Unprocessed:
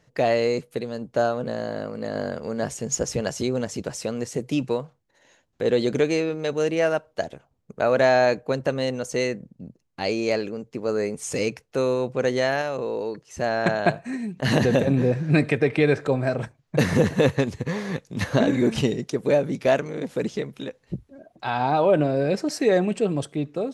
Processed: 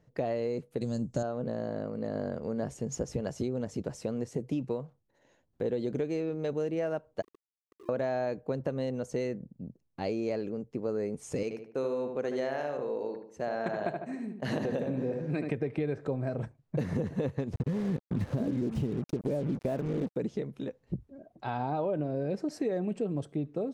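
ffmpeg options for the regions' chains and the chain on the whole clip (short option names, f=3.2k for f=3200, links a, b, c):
-filter_complex "[0:a]asettb=1/sr,asplit=3[a][b][c];[a]atrim=end=0.814[d];[b]atrim=start=0.81:end=1.23,asetpts=PTS-STARTPTS,afade=t=in:d=0.004:c=qsin,afade=t=out:st=0.416:d=0.004:c=qsin,lowpass=f=7.5k:t=q:w=3,bass=f=250:g=10,treble=f=4k:g=14,bandreject=f=440:w=8.5[e];[c]atrim=start=1.226[f];[d][e]acrossfade=d=0.004:c1=hsin:c2=qsin[g];[g][f]acrossfade=d=0.004:c1=qsin:c2=hsin,asettb=1/sr,asplit=3[h][i][j];[h]atrim=end=7.224[k];[i]atrim=start=7.22:end=7.89,asetpts=PTS-STARTPTS,afade=t=in:d=0.004:c=qsin,afade=t=out:st=0.666:d=0.004:c=qsin,asuperpass=centerf=370:order=12:qfactor=4.5,acompressor=threshold=-43dB:ratio=6:attack=3.2:release=140:knee=1:detection=peak,aeval=exprs='val(0)*gte(abs(val(0)),0.00668)':c=same[l];[j]atrim=start=7.886[m];[k][l]acrossfade=d=0.004:c1=hsin:c2=qsin[n];[n][m]acrossfade=d=0.004:c1=qsin:c2=hsin,asettb=1/sr,asplit=3[o][p][q];[o]atrim=end=11.434[r];[p]atrim=start=11.43:end=15.5,asetpts=PTS-STARTPTS,afade=t=in:d=0.004:c=qsin,afade=t=out:st=4.066:d=0.004:c=qsin,highpass=f=400:p=1,agate=range=-33dB:threshold=-39dB:ratio=3:release=100:detection=peak,asplit=2[s][t];[t]adelay=75,lowpass=f=2.7k:p=1,volume=-6dB,asplit=2[u][v];[v]adelay=75,lowpass=f=2.7k:p=1,volume=0.42,asplit=2[w][x];[x]adelay=75,lowpass=f=2.7k:p=1,volume=0.42,asplit=2[y][z];[z]adelay=75,lowpass=f=2.7k:p=1,volume=0.42,asplit=2[aa][ab];[ab]adelay=75,lowpass=f=2.7k:p=1,volume=0.42[ac];[s][u][w][y][aa][ac]amix=inputs=6:normalize=0,atrim=end_sample=179487[ad];[q]atrim=start=15.496[ae];[r][ad]acrossfade=d=0.004:c1=hsin:c2=qsin[af];[af][ae]acrossfade=d=0.004:c1=qsin:c2=hsin,asettb=1/sr,asplit=3[ag][ah][ai];[ag]atrim=end=17.534[aj];[ah]atrim=start=17.53:end=20.16,asetpts=PTS-STARTPTS,afade=t=in:d=0.004:c=qsin,afade=t=out:st=2.626:d=0.004:c=qsin,lowshelf=f=500:g=10,acompressor=threshold=-19dB:ratio=2:attack=3.2:release=140:knee=1:detection=peak,acrusher=bits=4:mix=0:aa=0.5[ak];[ai]atrim=start=20.156[al];[aj][ak]acrossfade=d=0.004:c1=hsin:c2=qsin[am];[am][al]acrossfade=d=0.004:c1=qsin:c2=hsin,tiltshelf=f=970:g=6.5,acompressor=threshold=-20dB:ratio=6,volume=-8dB"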